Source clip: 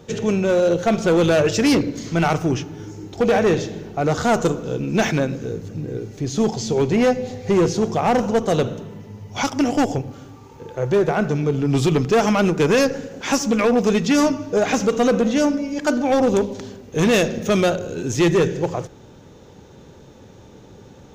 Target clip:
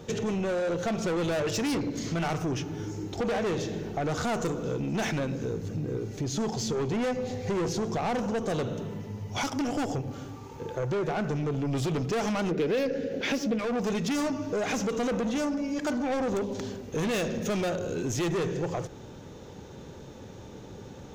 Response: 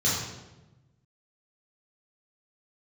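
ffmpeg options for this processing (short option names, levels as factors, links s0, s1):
-filter_complex "[0:a]asoftclip=type=tanh:threshold=0.106,asettb=1/sr,asplit=3[s0][s1][s2];[s0]atrim=end=12.514[s3];[s1]atrim=start=12.51:end=13.59,asetpts=PTS-STARTPTS,afade=t=in:d=0.004:c=qsin,afade=t=out:st=1.076:d=0.004:c=qsin,equalizer=f=250:t=o:w=1:g=5,equalizer=f=500:t=o:w=1:g=10,equalizer=f=1000:t=o:w=1:g=-9,equalizer=f=2000:t=o:w=1:g=6,equalizer=f=4000:t=o:w=1:g=5,equalizer=f=8000:t=o:w=1:g=-10[s4];[s2]atrim=start=13.586[s5];[s3][s4]acrossfade=d=0.004:c1=hsin:c2=qsin[s6];[s6][s5]acrossfade=d=0.004:c1=qsin:c2=hsin,asoftclip=type=hard:threshold=0.299,acompressor=threshold=0.0355:ratio=3"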